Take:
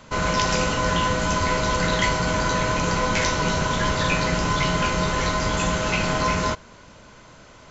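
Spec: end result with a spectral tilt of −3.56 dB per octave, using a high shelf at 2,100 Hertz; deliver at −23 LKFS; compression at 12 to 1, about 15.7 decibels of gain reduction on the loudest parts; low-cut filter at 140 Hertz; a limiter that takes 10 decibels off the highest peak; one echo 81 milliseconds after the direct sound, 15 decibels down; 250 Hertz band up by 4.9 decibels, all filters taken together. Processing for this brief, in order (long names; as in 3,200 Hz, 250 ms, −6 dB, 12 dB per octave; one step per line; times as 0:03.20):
high-pass filter 140 Hz
parametric band 250 Hz +8 dB
high-shelf EQ 2,100 Hz +5 dB
downward compressor 12 to 1, threshold −32 dBFS
brickwall limiter −30.5 dBFS
single-tap delay 81 ms −15 dB
level +16 dB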